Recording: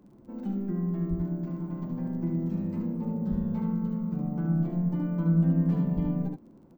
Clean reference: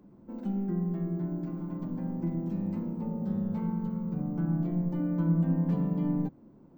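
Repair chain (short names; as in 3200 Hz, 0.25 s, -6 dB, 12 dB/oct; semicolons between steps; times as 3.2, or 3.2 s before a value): de-click; de-plosive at 1.09/3.3/5.95; inverse comb 73 ms -4.5 dB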